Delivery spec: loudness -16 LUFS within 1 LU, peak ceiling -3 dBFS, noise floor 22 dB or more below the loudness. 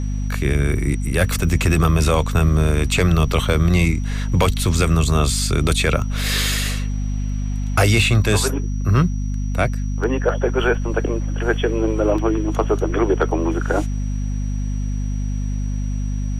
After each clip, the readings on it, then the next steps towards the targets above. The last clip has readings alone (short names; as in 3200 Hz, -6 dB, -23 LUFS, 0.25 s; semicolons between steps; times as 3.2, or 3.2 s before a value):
hum 50 Hz; harmonics up to 250 Hz; hum level -20 dBFS; steady tone 5800 Hz; tone level -45 dBFS; loudness -20.0 LUFS; peak -4.5 dBFS; loudness target -16.0 LUFS
-> notches 50/100/150/200/250 Hz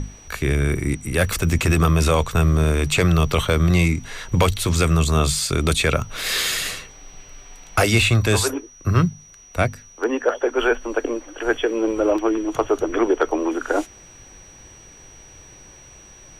hum none; steady tone 5800 Hz; tone level -45 dBFS
-> notch 5800 Hz, Q 30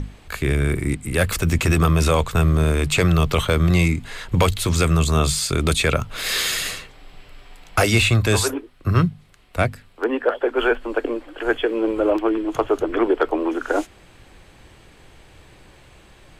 steady tone none; loudness -20.5 LUFS; peak -5.0 dBFS; loudness target -16.0 LUFS
-> gain +4.5 dB; limiter -3 dBFS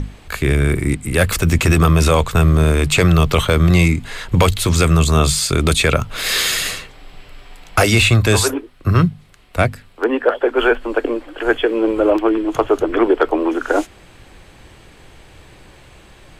loudness -16.0 LUFS; peak -3.0 dBFS; noise floor -45 dBFS